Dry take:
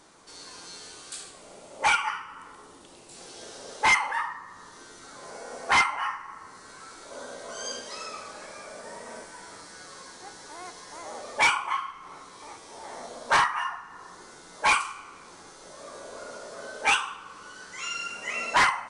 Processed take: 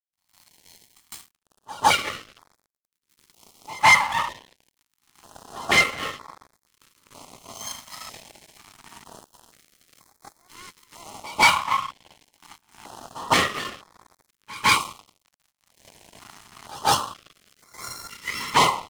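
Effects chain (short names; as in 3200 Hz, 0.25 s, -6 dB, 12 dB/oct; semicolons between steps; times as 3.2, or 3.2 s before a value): minimum comb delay 0.95 ms; HPF 86 Hz 24 dB/oct; bell 580 Hz +6 dB 1.2 oct; crossover distortion -40.5 dBFS; pre-echo 0.157 s -20.5 dB; stepped notch 2.1 Hz 400–2900 Hz; gain +6.5 dB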